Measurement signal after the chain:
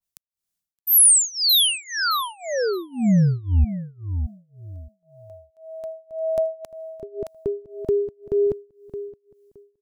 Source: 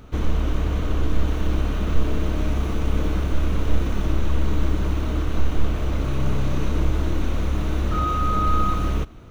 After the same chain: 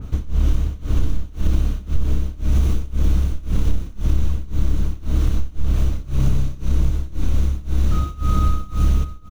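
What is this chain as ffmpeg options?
-filter_complex "[0:a]bass=f=250:g=12,treble=f=4000:g=9,asplit=2[s0][s1];[s1]aecho=0:1:619|1238|1857:0.251|0.0603|0.0145[s2];[s0][s2]amix=inputs=2:normalize=0,tremolo=f=1.9:d=0.96,acompressor=threshold=0.178:ratio=6,adynamicequalizer=threshold=0.00631:dfrequency=2600:dqfactor=0.7:tfrequency=2600:tqfactor=0.7:attack=5:release=100:ratio=0.375:range=1.5:mode=boostabove:tftype=highshelf,volume=1.33"

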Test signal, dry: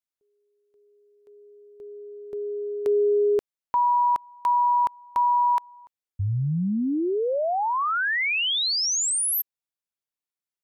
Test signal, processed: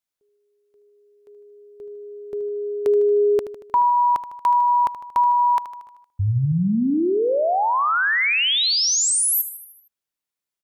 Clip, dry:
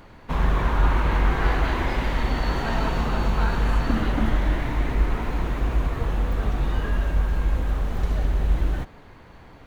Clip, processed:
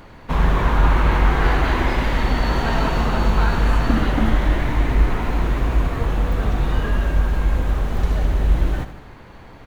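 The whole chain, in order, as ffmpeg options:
-af "aecho=1:1:77|154|231|308|385|462:0.237|0.135|0.077|0.0439|0.025|0.0143,volume=1.68"

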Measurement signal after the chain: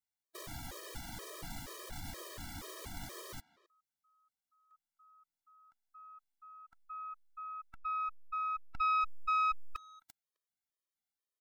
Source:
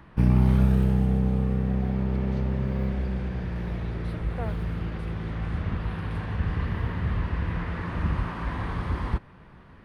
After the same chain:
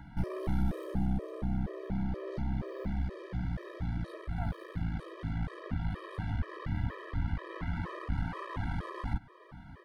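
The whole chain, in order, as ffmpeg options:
-filter_complex "[0:a]bandreject=f=2600:w=6.5,asplit=2[s0][s1];[s1]acompressor=threshold=0.0141:ratio=6,volume=1.41[s2];[s0][s2]amix=inputs=2:normalize=0,asoftclip=type=tanh:threshold=0.106,asplit=2[s3][s4];[s4]adelay=260,highpass=300,lowpass=3400,asoftclip=type=hard:threshold=0.0335,volume=0.1[s5];[s3][s5]amix=inputs=2:normalize=0,aeval=exprs='0.112*(cos(1*acos(clip(val(0)/0.112,-1,1)))-cos(1*PI/2))+0.0447*(cos(2*acos(clip(val(0)/0.112,-1,1)))-cos(2*PI/2))':c=same,afftfilt=real='re*gt(sin(2*PI*2.1*pts/sr)*(1-2*mod(floor(b*sr/1024/330),2)),0)':imag='im*gt(sin(2*PI*2.1*pts/sr)*(1-2*mod(floor(b*sr/1024/330),2)),0)':win_size=1024:overlap=0.75,volume=0.531"

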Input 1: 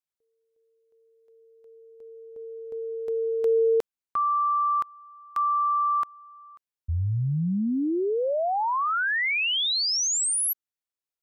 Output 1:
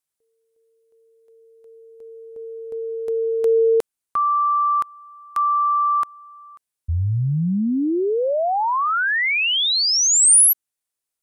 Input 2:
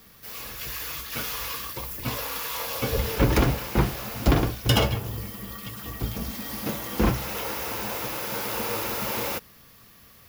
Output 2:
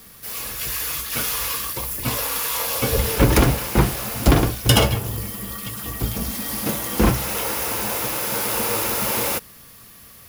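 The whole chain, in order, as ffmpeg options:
-af "equalizer=f=9600:t=o:w=0.78:g=9,volume=1.78"

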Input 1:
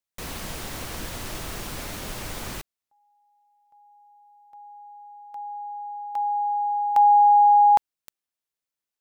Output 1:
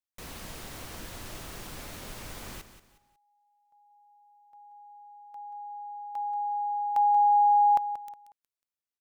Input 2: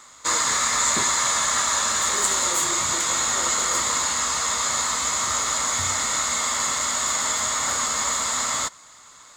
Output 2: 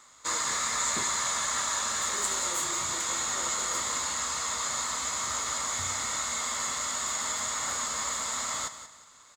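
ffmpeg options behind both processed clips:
-af "aecho=1:1:182|364|546:0.251|0.0829|0.0274,volume=0.398"

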